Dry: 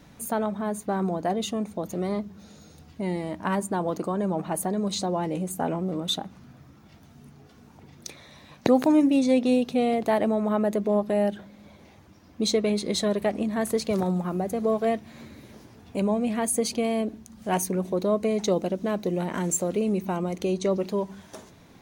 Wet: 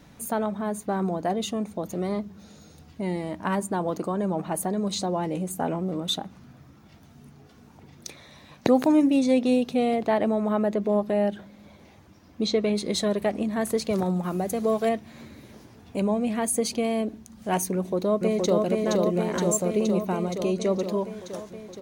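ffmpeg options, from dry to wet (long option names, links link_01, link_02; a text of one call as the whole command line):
ffmpeg -i in.wav -filter_complex "[0:a]asettb=1/sr,asplit=3[link_01][link_02][link_03];[link_01]atrim=end=9.964[link_04];[link_02]atrim=start=9.96:end=12.75,asetpts=PTS-STARTPTS,afade=type=in:duration=0.004:curve=qsin,afade=type=out:start_time=2.786:duration=0.004:curve=qsin,acrossover=split=5500[link_05][link_06];[link_06]acompressor=threshold=-59dB:ratio=4:attack=1:release=60[link_07];[link_05][link_07]amix=inputs=2:normalize=0[link_08];[link_03]atrim=start=12.746[link_09];[link_04][link_08]acrossfade=duration=0.004:curve1=hsin:curve2=qsin[link_10];[link_10][link_09]acrossfade=duration=0.004:curve1=qsin:curve2=hsin,asettb=1/sr,asplit=3[link_11][link_12][link_13];[link_11]atrim=end=14.234[link_14];[link_12]atrim=start=14.23:end=14.89,asetpts=PTS-STARTPTS,afade=type=in:duration=0.004:curve=qsin,afade=type=out:start_time=0.656:duration=0.004:curve=qsin,highshelf=frequency=2600:gain=8[link_15];[link_13]atrim=start=14.886[link_16];[link_14][link_15]acrossfade=duration=0.004:curve1=hsin:curve2=qsin[link_17];[link_17][link_16]acrossfade=duration=0.004:curve1=qsin:curve2=hsin,asplit=2[link_18][link_19];[link_19]afade=type=in:start_time=17.74:duration=0.01,afade=type=out:start_time=18.6:duration=0.01,aecho=0:1:470|940|1410|1880|2350|2820|3290|3760|4230|4700|5170|5640:0.794328|0.595746|0.44681|0.335107|0.25133|0.188498|0.141373|0.10603|0.0795225|0.0596419|0.0447314|0.0335486[link_20];[link_18][link_20]amix=inputs=2:normalize=0" out.wav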